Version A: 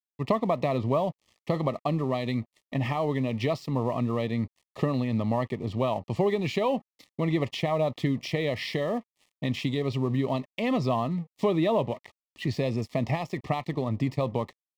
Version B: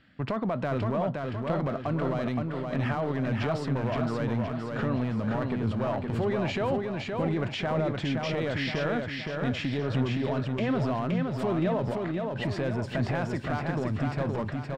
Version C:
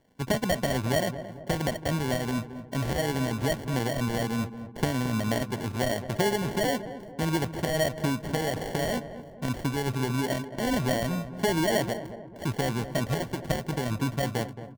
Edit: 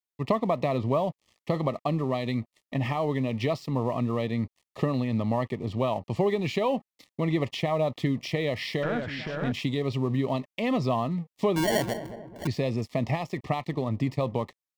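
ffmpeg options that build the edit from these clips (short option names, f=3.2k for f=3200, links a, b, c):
-filter_complex "[0:a]asplit=3[a][b][c];[a]atrim=end=8.832[d];[1:a]atrim=start=8.828:end=9.522[e];[b]atrim=start=9.518:end=11.562[f];[2:a]atrim=start=11.558:end=12.472[g];[c]atrim=start=12.468[h];[d][e]acrossfade=d=0.004:c1=hsin:c2=hsin[i];[i][f]acrossfade=d=0.004:c1=hsin:c2=hsin[j];[j][g]acrossfade=d=0.004:c1=hsin:c2=hsin[k];[k][h]acrossfade=d=0.004:c1=hsin:c2=hsin"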